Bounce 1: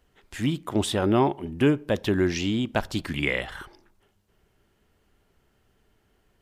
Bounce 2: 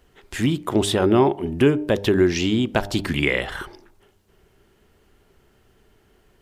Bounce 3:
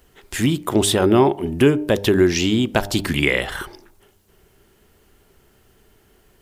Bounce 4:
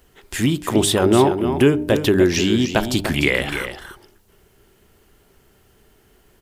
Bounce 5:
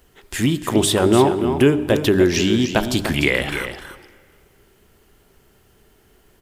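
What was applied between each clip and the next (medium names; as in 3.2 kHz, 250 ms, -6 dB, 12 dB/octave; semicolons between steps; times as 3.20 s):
peaking EQ 390 Hz +5 dB 0.34 oct; de-hum 100 Hz, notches 9; in parallel at +2.5 dB: compression, threshold -27 dBFS, peak gain reduction 12.5 dB
treble shelf 7.2 kHz +10 dB; trim +2 dB
delay 296 ms -9 dB
reverberation RT60 2.0 s, pre-delay 45 ms, DRR 17 dB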